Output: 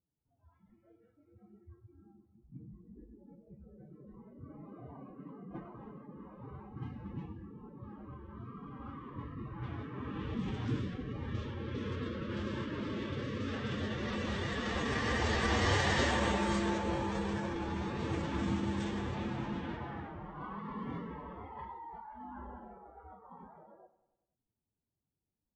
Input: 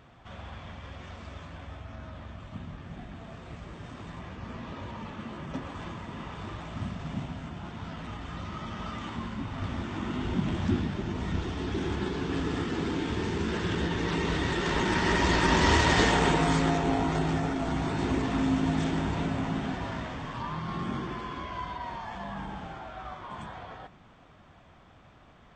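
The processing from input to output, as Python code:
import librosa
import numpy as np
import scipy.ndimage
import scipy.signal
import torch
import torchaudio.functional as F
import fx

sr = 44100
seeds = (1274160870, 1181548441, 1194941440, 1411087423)

p1 = fx.pitch_keep_formants(x, sr, semitones=4.0)
p2 = fx.noise_reduce_blind(p1, sr, reduce_db=26)
p3 = fx.env_lowpass(p2, sr, base_hz=420.0, full_db=-23.5)
p4 = p3 + fx.echo_feedback(p3, sr, ms=97, feedback_pct=57, wet_db=-16.0, dry=0)
y = p4 * librosa.db_to_amplitude(-7.0)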